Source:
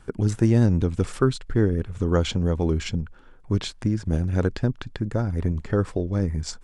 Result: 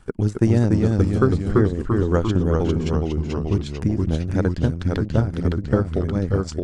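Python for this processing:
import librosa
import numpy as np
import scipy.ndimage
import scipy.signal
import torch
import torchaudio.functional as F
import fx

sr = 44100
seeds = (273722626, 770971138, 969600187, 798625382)

y = fx.transient(x, sr, attack_db=3, sustain_db=-12)
y = fx.echo_pitch(y, sr, ms=265, semitones=-1, count=3, db_per_echo=-3.0)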